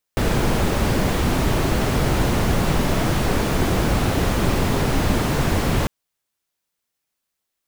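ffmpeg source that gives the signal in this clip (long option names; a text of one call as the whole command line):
ffmpeg -f lavfi -i "anoisesrc=color=brown:amplitude=0.556:duration=5.7:sample_rate=44100:seed=1" out.wav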